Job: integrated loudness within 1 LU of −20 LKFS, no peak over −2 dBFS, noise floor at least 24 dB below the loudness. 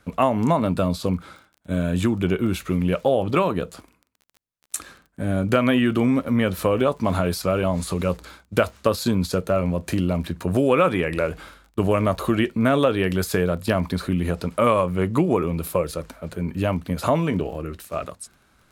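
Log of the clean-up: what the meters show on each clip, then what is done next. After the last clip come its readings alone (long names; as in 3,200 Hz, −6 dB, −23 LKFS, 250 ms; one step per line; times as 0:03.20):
crackle rate 24 per second; integrated loudness −23.0 LKFS; sample peak −4.0 dBFS; target loudness −20.0 LKFS
→ click removal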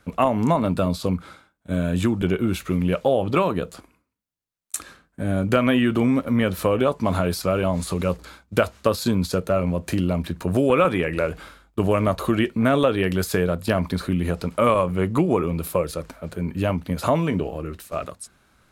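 crackle rate 0.80 per second; integrated loudness −23.0 LKFS; sample peak −4.0 dBFS; target loudness −20.0 LKFS
→ level +3 dB
brickwall limiter −2 dBFS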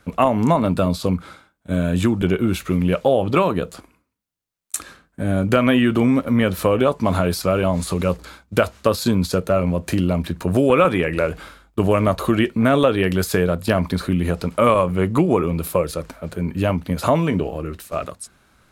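integrated loudness −20.0 LKFS; sample peak −2.0 dBFS; background noise floor −64 dBFS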